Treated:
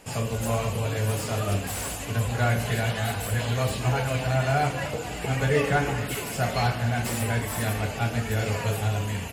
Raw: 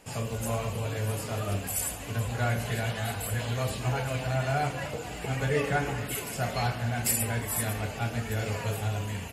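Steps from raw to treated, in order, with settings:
0:00.54–0:02.05: dynamic equaliser 6,800 Hz, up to +4 dB, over −44 dBFS, Q 0.7
slew-rate limiting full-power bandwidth 98 Hz
level +4.5 dB

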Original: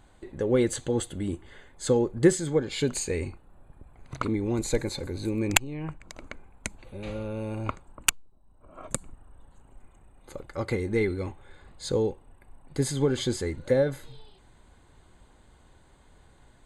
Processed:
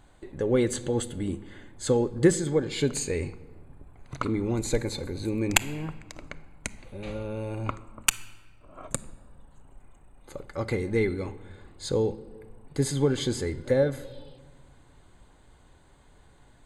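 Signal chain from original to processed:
rectangular room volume 1,300 cubic metres, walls mixed, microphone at 0.32 metres

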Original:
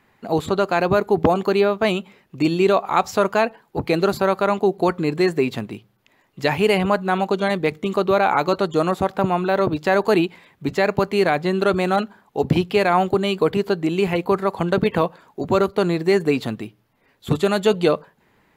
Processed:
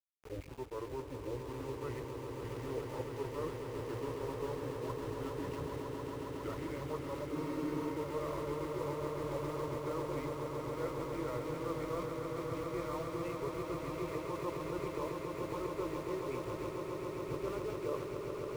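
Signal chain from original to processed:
pitch glide at a constant tempo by −8 semitones ending unshifted
low-pass filter 2,000 Hz 24 dB per octave
reversed playback
downward compressor 6 to 1, threshold −33 dBFS, peak gain reduction 19 dB
reversed playback
mains hum 50 Hz, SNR 14 dB
phaser with its sweep stopped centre 1,100 Hz, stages 8
centre clipping without the shift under −44.5 dBFS
echo that builds up and dies away 137 ms, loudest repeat 8, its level −8 dB
frozen spectrum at 0:07.33, 0.61 s
level −4 dB

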